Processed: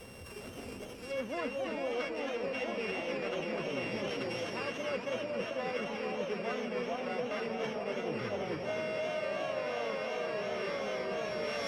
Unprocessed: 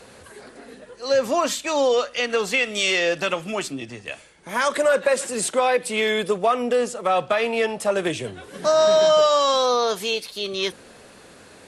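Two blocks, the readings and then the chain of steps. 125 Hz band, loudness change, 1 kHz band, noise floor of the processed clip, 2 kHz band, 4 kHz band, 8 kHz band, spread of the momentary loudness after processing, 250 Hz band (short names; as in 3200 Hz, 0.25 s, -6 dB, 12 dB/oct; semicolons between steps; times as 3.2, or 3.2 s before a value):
-6.5 dB, -15.0 dB, -16.0 dB, -46 dBFS, -12.5 dB, -17.0 dB, -23.5 dB, 2 LU, -9.0 dB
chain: sample sorter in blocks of 16 samples; low shelf 220 Hz +8.5 dB; echo with dull and thin repeats by turns 0.442 s, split 1100 Hz, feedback 80%, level -2 dB; treble ducked by the level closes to 2800 Hz, closed at -17.5 dBFS; reverse; compressor 12:1, threshold -29 dBFS, peak gain reduction 18 dB; reverse; warbling echo 0.27 s, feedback 65%, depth 205 cents, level -6.5 dB; gain -5 dB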